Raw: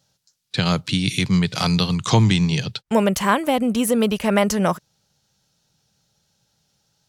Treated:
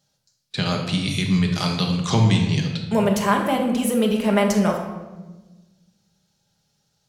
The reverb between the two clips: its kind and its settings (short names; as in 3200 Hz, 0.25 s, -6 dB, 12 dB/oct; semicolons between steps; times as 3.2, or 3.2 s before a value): shoebox room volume 740 m³, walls mixed, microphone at 1.3 m; gain -4.5 dB